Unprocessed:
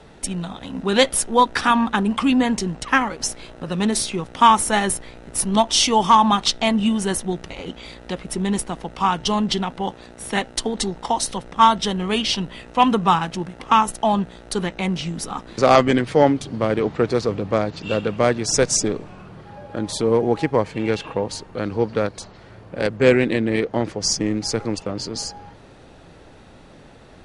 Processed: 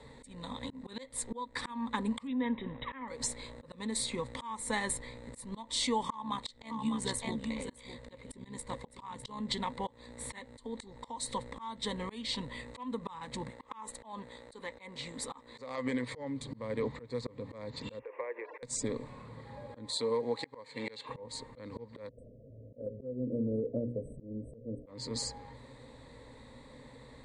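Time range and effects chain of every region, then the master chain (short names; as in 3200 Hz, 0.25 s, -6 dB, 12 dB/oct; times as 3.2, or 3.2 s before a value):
2.27–3.08 brick-wall FIR low-pass 3900 Hz + bell 84 Hz -11.5 dB 0.67 oct
6.08–9.4 AM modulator 66 Hz, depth 40% + echo 0.604 s -10 dB
13.49–16.13 tone controls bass -10 dB, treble -2 dB + compressor, threshold -19 dBFS
17.99–18.63 Chebyshev band-pass 350–2600 Hz, order 5 + notch 1300 Hz, Q 15 + compressor 20:1, threshold -27 dBFS
19.89–21.09 HPF 500 Hz 6 dB/oct + bell 4200 Hz +7 dB 0.37 oct
22.09–24.87 brick-wall FIR band-stop 690–7800 Hz + air absorption 430 m + notches 60/120/180/240/300/360/420/480/540 Hz
whole clip: ripple EQ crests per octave 1, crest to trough 14 dB; compressor 3:1, threshold -21 dBFS; auto swell 0.28 s; gain -9 dB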